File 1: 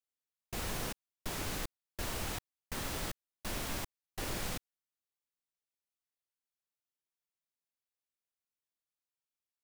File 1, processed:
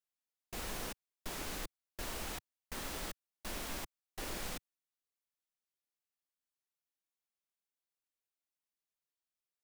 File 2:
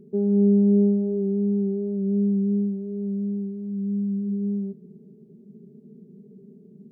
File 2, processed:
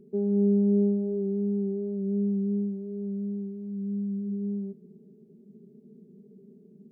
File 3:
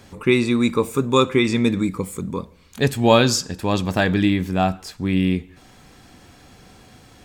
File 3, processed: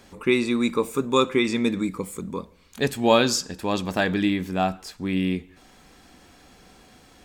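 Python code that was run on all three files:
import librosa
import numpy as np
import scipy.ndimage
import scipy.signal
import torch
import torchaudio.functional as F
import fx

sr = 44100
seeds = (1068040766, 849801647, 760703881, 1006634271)

y = fx.peak_eq(x, sr, hz=110.0, db=-10.0, octaves=0.85)
y = y * 10.0 ** (-3.0 / 20.0)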